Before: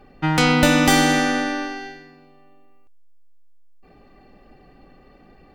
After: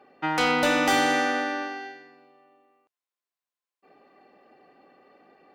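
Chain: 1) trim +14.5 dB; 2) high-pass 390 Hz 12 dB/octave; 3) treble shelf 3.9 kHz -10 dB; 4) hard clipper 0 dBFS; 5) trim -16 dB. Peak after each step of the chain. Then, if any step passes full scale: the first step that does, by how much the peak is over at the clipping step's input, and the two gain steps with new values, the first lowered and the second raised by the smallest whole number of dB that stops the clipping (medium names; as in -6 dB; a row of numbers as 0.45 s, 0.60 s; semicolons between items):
+12.0 dBFS, +10.5 dBFS, +8.5 dBFS, 0.0 dBFS, -16.0 dBFS; step 1, 8.5 dB; step 1 +5.5 dB, step 5 -7 dB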